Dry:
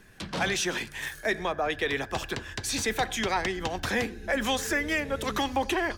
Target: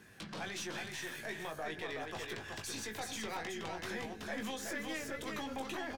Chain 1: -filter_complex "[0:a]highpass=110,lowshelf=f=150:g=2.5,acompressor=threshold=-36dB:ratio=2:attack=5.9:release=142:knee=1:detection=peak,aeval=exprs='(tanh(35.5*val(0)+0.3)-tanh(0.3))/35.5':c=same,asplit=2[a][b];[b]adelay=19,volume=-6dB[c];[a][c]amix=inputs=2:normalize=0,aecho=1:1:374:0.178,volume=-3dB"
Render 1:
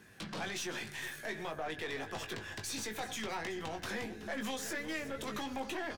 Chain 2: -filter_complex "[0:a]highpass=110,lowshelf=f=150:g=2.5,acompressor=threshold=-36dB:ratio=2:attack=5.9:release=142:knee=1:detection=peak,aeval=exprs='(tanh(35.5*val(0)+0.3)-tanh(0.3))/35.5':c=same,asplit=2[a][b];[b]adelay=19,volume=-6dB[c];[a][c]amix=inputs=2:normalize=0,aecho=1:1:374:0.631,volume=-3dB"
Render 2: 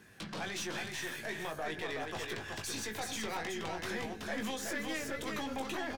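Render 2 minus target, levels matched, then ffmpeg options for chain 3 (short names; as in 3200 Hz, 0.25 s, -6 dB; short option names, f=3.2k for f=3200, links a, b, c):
compressor: peak gain reduction -4 dB
-filter_complex "[0:a]highpass=110,lowshelf=f=150:g=2.5,acompressor=threshold=-43.5dB:ratio=2:attack=5.9:release=142:knee=1:detection=peak,aeval=exprs='(tanh(35.5*val(0)+0.3)-tanh(0.3))/35.5':c=same,asplit=2[a][b];[b]adelay=19,volume=-6dB[c];[a][c]amix=inputs=2:normalize=0,aecho=1:1:374:0.631,volume=-3dB"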